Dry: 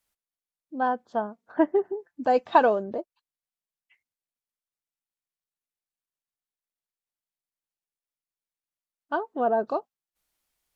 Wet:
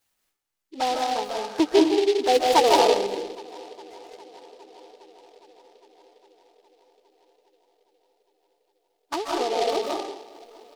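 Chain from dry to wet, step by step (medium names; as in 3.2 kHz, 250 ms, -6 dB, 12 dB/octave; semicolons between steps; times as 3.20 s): treble shelf 2.7 kHz +10.5 dB; band-stop 3.8 kHz, Q 21; comb 2.4 ms, depth 72%; touch-sensitive flanger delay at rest 10.5 ms, full sweep at -21.5 dBFS; 9.15–9.59 s: compression, threshold -24 dBFS, peak gain reduction 4.5 dB; tape echo 408 ms, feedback 81%, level -22 dB, low-pass 2.5 kHz; algorithmic reverb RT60 0.83 s, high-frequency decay 0.6×, pre-delay 110 ms, DRR -2.5 dB; delay time shaken by noise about 3.3 kHz, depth 0.067 ms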